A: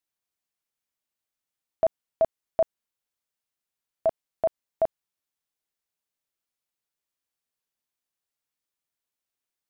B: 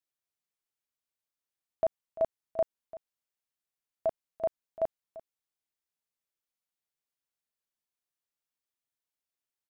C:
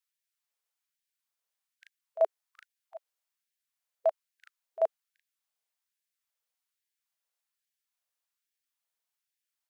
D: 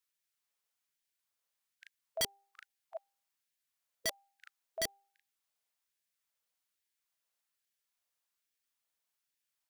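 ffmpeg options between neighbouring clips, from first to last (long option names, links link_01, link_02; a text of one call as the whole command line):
ffmpeg -i in.wav -af "aecho=1:1:342:0.141,volume=-5.5dB" out.wav
ffmpeg -i in.wav -af "afftfilt=real='re*gte(b*sr/1024,400*pow(1600/400,0.5+0.5*sin(2*PI*1.2*pts/sr)))':imag='im*gte(b*sr/1024,400*pow(1600/400,0.5+0.5*sin(2*PI*1.2*pts/sr)))':win_size=1024:overlap=0.75,volume=3.5dB" out.wav
ffmpeg -i in.wav -af "bandreject=frequency=397.5:width_type=h:width=4,bandreject=frequency=795:width_type=h:width=4,aeval=exprs='(mod(22.4*val(0)+1,2)-1)/22.4':channel_layout=same,volume=1dB" out.wav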